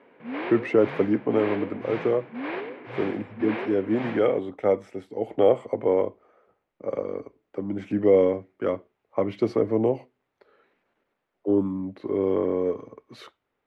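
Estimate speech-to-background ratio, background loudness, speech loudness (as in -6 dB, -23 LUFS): 10.0 dB, -35.5 LUFS, -25.5 LUFS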